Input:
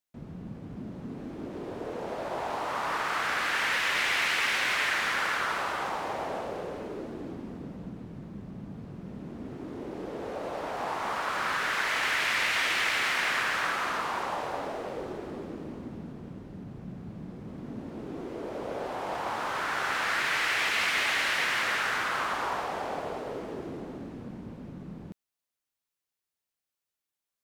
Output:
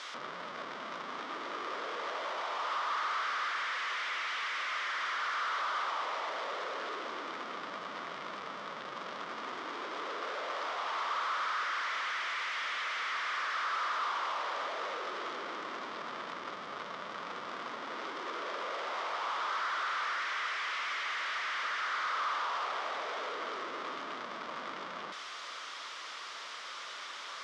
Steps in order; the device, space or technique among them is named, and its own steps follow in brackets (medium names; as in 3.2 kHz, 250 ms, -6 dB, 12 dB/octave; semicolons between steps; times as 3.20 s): home computer beeper (one-bit comparator; cabinet simulation 750–4400 Hz, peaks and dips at 790 Hz -7 dB, 1.2 kHz +6 dB, 1.7 kHz -3 dB, 2.6 kHz -7 dB, 4.2 kHz -6 dB)